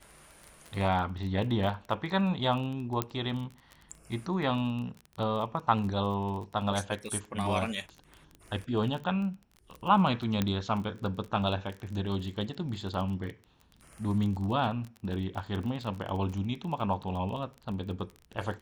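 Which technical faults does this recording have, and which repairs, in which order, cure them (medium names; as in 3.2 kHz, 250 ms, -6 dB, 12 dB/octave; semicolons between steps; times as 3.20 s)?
crackle 24 per s -36 dBFS
3.02 s: pop -13 dBFS
10.42 s: pop -14 dBFS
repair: de-click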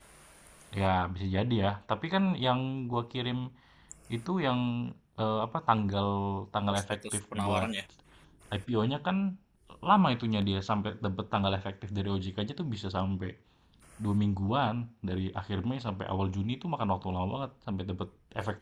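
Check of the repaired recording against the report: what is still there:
10.42 s: pop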